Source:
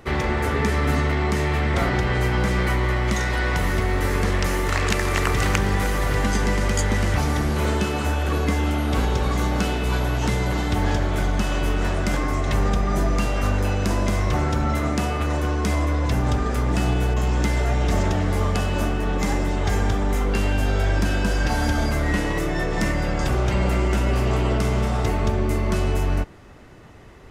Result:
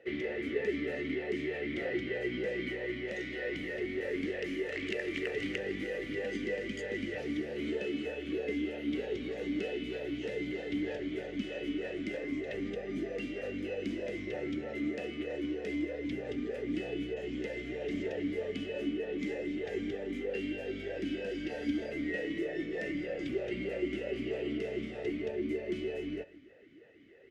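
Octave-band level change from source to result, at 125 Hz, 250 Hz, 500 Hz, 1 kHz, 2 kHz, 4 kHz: -27.0 dB, -9.5 dB, -8.0 dB, -26.5 dB, -12.5 dB, -14.0 dB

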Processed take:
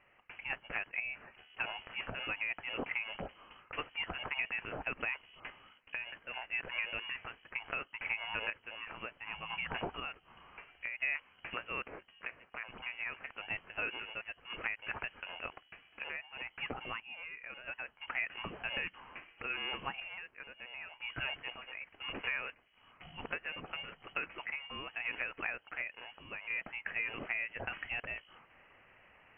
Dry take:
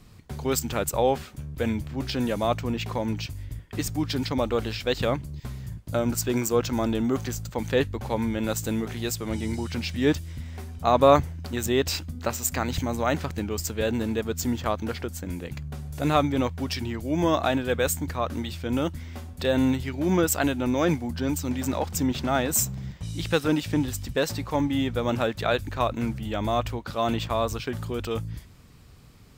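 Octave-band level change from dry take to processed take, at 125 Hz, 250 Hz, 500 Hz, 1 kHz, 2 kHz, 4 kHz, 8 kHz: -27.0 dB, -27.5 dB, -23.5 dB, -16.5 dB, -1.5 dB, -9.5 dB, under -40 dB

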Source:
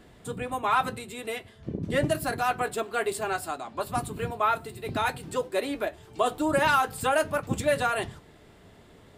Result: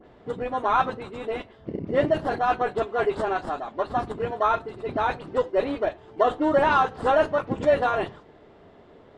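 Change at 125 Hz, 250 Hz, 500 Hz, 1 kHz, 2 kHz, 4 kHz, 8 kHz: -1.5 dB, +3.0 dB, +5.5 dB, +3.5 dB, -0.5 dB, -3.5 dB, under -15 dB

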